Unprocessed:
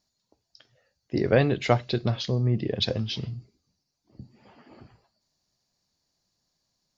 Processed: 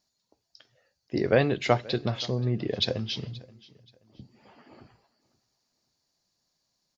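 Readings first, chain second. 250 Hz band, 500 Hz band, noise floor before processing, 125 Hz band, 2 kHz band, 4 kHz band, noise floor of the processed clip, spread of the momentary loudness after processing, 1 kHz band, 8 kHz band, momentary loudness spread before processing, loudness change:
−2.0 dB, −0.5 dB, −80 dBFS, −4.0 dB, 0.0 dB, 0.0 dB, −80 dBFS, 11 LU, −0.5 dB, can't be measured, 11 LU, −1.5 dB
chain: low-shelf EQ 170 Hz −6.5 dB
repeating echo 528 ms, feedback 29%, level −22 dB

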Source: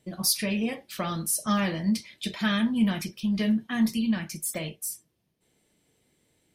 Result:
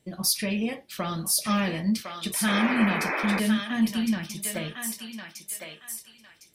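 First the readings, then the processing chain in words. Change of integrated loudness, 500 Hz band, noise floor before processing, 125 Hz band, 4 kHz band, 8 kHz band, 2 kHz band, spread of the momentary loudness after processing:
+1.0 dB, +2.0 dB, −74 dBFS, 0.0 dB, +2.0 dB, +2.0 dB, +5.5 dB, 13 LU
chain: feedback echo with a high-pass in the loop 1,057 ms, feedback 32%, high-pass 860 Hz, level −3 dB
sound drawn into the spectrogram noise, 0:02.47–0:03.40, 230–2,600 Hz −29 dBFS

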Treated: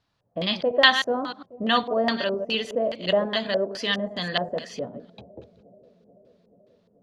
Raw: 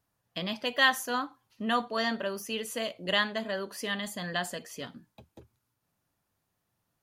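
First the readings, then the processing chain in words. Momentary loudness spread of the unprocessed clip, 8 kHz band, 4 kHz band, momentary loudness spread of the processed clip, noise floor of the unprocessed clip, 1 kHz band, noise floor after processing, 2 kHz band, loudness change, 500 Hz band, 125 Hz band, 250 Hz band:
16 LU, −5.0 dB, +7.5 dB, 17 LU, −81 dBFS, +5.0 dB, −67 dBFS, +4.5 dB, +6.5 dB, +10.0 dB, +6.0 dB, +6.0 dB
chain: delay that plays each chunk backwards 102 ms, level −9.5 dB
auto-filter low-pass square 2.4 Hz 580–4,100 Hz
on a send: bucket-brigade delay 433 ms, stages 2,048, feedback 75%, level −23 dB
on the sum: level +5 dB

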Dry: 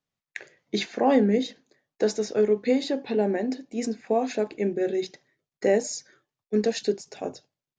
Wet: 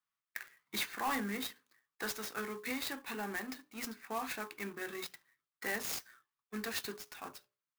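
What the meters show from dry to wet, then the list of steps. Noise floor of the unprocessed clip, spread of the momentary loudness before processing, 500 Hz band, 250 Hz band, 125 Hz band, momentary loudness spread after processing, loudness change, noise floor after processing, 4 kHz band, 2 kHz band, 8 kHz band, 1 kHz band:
below −85 dBFS, 14 LU, −22.0 dB, −17.5 dB, −16.0 dB, 12 LU, −14.0 dB, below −85 dBFS, −6.0 dB, −1.5 dB, −6.0 dB, −9.0 dB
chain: in parallel at −7 dB: dead-zone distortion −39.5 dBFS
on the sum: low shelf with overshoot 800 Hz −12.5 dB, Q 3
mains-hum notches 60/120/180/240/300/360/420/480/540/600 Hz
soft clipping −23.5 dBFS, distortion −14 dB
converter with an unsteady clock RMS 0.032 ms
level −5 dB

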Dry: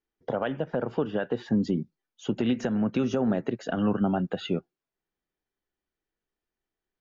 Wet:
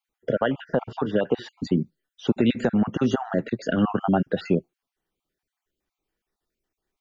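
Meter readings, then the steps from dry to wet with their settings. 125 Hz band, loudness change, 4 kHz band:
+3.5 dB, +3.5 dB, +3.5 dB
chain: time-frequency cells dropped at random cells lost 34%
level +6.5 dB

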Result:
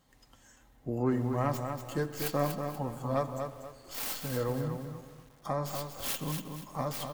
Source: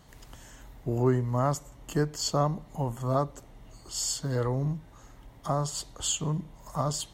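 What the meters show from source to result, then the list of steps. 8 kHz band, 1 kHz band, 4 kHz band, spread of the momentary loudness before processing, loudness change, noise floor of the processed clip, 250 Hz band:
−10.0 dB, −3.0 dB, −7.0 dB, 12 LU, −4.0 dB, −61 dBFS, −2.5 dB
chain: stylus tracing distortion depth 0.39 ms
comb filter 3.8 ms, depth 33%
single-tap delay 130 ms −17.5 dB
bit reduction 11 bits
flanger 0.81 Hz, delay 7.3 ms, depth 1.7 ms, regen −55%
noise reduction from a noise print of the clip's start 7 dB
low-shelf EQ 61 Hz −6.5 dB
on a send: bucket-brigade delay 83 ms, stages 2,048, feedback 79%, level −18.5 dB
on the sum: feedback echo at a low word length 240 ms, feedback 35%, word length 9 bits, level −6 dB

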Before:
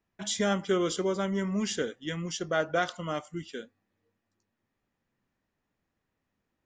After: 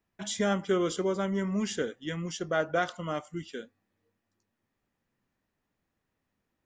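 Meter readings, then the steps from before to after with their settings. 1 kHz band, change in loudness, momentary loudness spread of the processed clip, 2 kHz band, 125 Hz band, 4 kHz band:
−0.5 dB, −0.5 dB, 10 LU, −1.0 dB, 0.0 dB, −3.0 dB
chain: dynamic equaliser 4,700 Hz, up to −4 dB, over −48 dBFS, Q 0.76

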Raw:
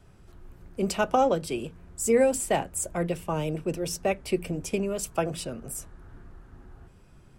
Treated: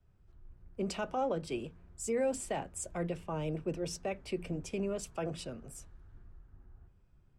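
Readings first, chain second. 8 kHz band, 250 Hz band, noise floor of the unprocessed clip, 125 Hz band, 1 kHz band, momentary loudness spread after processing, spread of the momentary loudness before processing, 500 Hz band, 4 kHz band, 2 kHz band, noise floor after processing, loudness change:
−10.5 dB, −8.0 dB, −54 dBFS, −6.5 dB, −10.5 dB, 11 LU, 13 LU, −9.5 dB, −8.5 dB, −10.5 dB, −65 dBFS, −9.0 dB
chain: brickwall limiter −20 dBFS, peak gain reduction 9.5 dB
high-frequency loss of the air 58 metres
multiband upward and downward expander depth 40%
level −5.5 dB

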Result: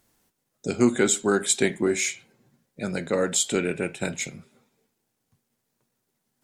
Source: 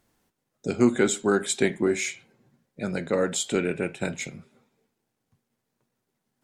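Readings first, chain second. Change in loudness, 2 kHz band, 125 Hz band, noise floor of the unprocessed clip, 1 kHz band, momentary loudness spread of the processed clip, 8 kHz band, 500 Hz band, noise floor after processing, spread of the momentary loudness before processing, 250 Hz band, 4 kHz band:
+1.5 dB, +1.0 dB, 0.0 dB, −81 dBFS, +0.5 dB, 12 LU, +5.5 dB, 0.0 dB, −78 dBFS, 13 LU, 0.0 dB, +3.0 dB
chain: high-shelf EQ 4,300 Hz +7.5 dB

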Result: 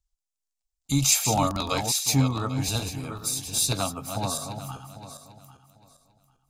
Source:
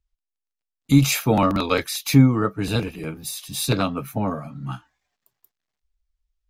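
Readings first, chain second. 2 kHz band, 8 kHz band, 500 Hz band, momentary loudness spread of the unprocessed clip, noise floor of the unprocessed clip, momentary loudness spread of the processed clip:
−6.5 dB, +6.5 dB, −7.0 dB, 16 LU, −85 dBFS, 18 LU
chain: feedback delay that plays each chunk backwards 398 ms, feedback 44%, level −7.5 dB
drawn EQ curve 100 Hz 0 dB, 160 Hz −7 dB, 480 Hz −8 dB, 740 Hz +3 dB, 1,800 Hz −8 dB, 7,400 Hz +11 dB, 12,000 Hz +2 dB
level −3 dB

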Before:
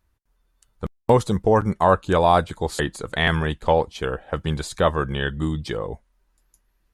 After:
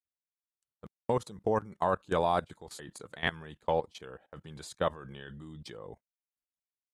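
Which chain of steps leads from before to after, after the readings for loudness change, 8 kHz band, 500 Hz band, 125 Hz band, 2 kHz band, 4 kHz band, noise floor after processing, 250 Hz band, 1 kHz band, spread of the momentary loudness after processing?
−10.5 dB, −12.0 dB, −11.5 dB, −17.0 dB, −12.5 dB, −13.0 dB, below −85 dBFS, −14.5 dB, −11.5 dB, 18 LU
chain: high-pass filter 110 Hz 12 dB per octave
noise gate −37 dBFS, range −20 dB
output level in coarse steps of 19 dB
level −7.5 dB

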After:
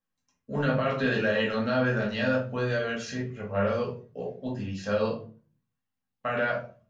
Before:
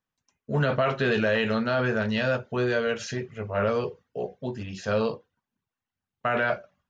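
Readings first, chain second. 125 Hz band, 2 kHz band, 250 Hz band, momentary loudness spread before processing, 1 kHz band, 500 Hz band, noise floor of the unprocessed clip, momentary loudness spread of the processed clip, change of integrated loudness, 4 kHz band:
−1.5 dB, −1.5 dB, −0.5 dB, 10 LU, −2.5 dB, −2.0 dB, below −85 dBFS, 10 LU, −2.0 dB, −2.0 dB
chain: rectangular room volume 240 cubic metres, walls furnished, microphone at 2.2 metres
level −6 dB

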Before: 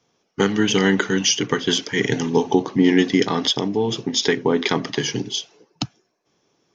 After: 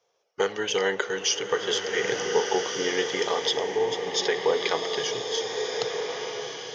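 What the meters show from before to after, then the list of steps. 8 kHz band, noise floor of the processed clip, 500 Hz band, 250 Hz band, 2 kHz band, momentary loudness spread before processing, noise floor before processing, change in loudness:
can't be measured, −71 dBFS, −2.5 dB, −17.5 dB, −4.0 dB, 10 LU, −70 dBFS, −6.5 dB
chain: low shelf with overshoot 360 Hz −11.5 dB, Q 3
slow-attack reverb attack 1,540 ms, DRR 3 dB
level −6.5 dB

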